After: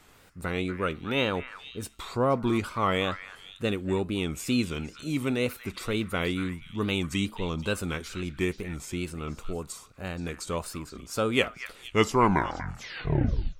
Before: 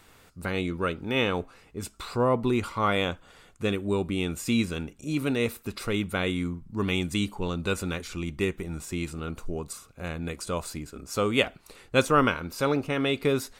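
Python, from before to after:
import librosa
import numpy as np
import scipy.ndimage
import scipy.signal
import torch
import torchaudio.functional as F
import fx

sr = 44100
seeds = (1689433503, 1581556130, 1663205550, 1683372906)

y = fx.tape_stop_end(x, sr, length_s=1.81)
y = fx.wow_flutter(y, sr, seeds[0], rate_hz=2.1, depth_cents=120.0)
y = fx.echo_stepped(y, sr, ms=238, hz=1600.0, octaves=1.4, feedback_pct=70, wet_db=-8)
y = y * librosa.db_to_amplitude(-1.0)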